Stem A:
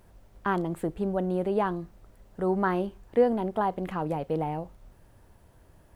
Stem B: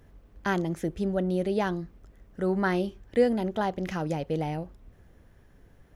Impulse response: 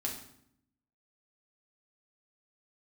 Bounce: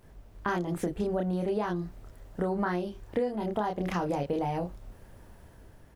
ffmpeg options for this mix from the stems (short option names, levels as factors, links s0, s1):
-filter_complex "[0:a]dynaudnorm=f=110:g=9:m=2,volume=0.75[s0];[1:a]equalizer=f=5100:w=1.5:g=2.5,adelay=28,volume=1[s1];[s0][s1]amix=inputs=2:normalize=0,acompressor=threshold=0.0501:ratio=10"